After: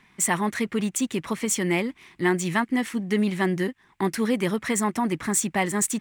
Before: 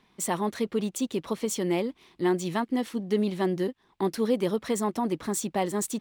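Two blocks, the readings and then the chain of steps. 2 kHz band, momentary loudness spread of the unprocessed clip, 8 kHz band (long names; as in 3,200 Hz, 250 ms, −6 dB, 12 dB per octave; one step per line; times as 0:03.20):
+11.0 dB, 5 LU, +8.0 dB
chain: graphic EQ with 10 bands 125 Hz +4 dB, 500 Hz −6 dB, 2,000 Hz +10 dB, 4,000 Hz −5 dB, 8,000 Hz +6 dB
level +3.5 dB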